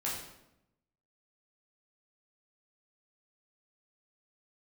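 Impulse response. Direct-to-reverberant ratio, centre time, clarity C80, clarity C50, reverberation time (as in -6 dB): -6.5 dB, 51 ms, 5.5 dB, 2.5 dB, 0.85 s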